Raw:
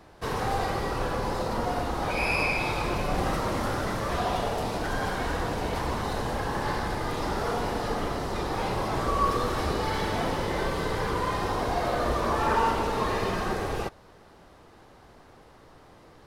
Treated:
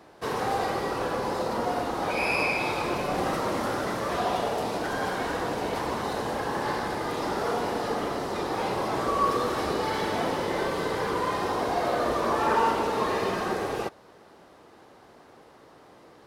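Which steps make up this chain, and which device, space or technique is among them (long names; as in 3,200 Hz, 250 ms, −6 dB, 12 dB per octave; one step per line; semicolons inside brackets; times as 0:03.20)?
filter by subtraction (in parallel: low-pass filter 340 Hz 12 dB per octave + polarity inversion)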